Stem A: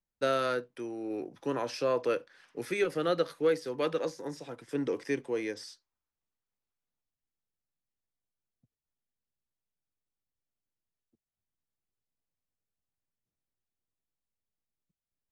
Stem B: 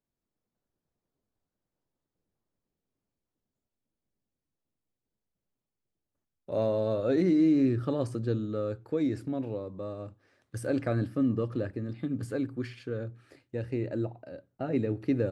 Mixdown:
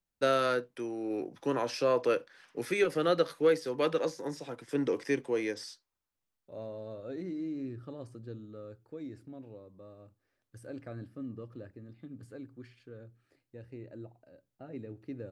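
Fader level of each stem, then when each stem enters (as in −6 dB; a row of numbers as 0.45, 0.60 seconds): +1.5, −14.0 decibels; 0.00, 0.00 seconds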